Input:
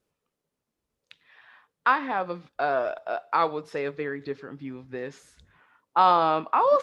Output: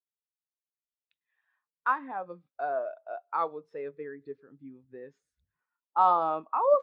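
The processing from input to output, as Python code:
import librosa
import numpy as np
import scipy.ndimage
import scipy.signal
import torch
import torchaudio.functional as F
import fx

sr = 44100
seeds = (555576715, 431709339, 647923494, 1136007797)

y = fx.spectral_expand(x, sr, expansion=1.5)
y = y * librosa.db_to_amplitude(-3.0)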